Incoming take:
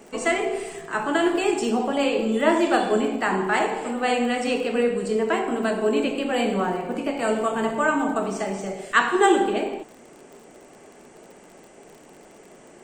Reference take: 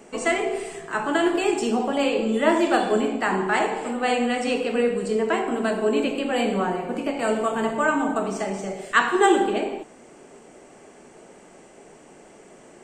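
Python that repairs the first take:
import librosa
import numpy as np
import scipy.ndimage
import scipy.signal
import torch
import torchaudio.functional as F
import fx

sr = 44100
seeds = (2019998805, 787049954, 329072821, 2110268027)

y = fx.fix_declick_ar(x, sr, threshold=6.5)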